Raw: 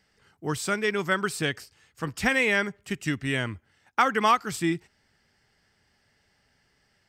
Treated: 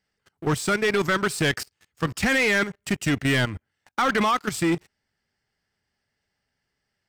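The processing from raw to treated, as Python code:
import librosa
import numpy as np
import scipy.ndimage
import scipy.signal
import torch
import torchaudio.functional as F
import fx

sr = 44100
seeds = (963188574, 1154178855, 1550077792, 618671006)

y = fx.level_steps(x, sr, step_db=15)
y = fx.leveller(y, sr, passes=3)
y = y * 10.0 ** (2.0 / 20.0)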